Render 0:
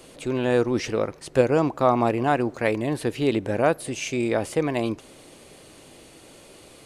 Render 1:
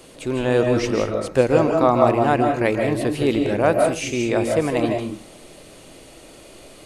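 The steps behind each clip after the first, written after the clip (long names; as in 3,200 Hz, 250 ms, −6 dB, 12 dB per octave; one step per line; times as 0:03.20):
on a send at −4 dB: low-shelf EQ 420 Hz +8 dB + convolution reverb RT60 0.35 s, pre-delay 115 ms
on the sum: level +2 dB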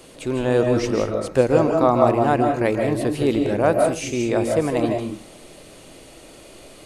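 dynamic equaliser 2,500 Hz, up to −4 dB, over −36 dBFS, Q 0.96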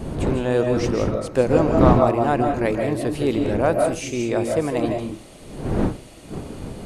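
wind on the microphone 300 Hz −25 dBFS
level −1.5 dB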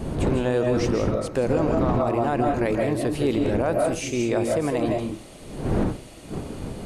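brickwall limiter −13 dBFS, peak gain reduction 11 dB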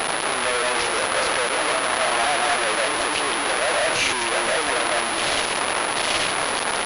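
sign of each sample alone
high-pass filter 810 Hz 12 dB per octave
switching amplifier with a slow clock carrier 10,000 Hz
level +8 dB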